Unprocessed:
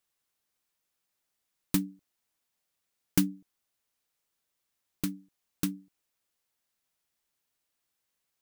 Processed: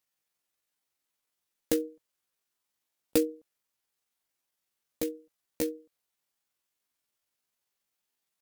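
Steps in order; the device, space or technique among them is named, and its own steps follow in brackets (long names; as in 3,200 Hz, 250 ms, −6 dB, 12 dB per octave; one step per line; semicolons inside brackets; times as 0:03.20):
chipmunk voice (pitch shifter +8.5 semitones)
low-shelf EQ 160 Hz −4.5 dB
level +1 dB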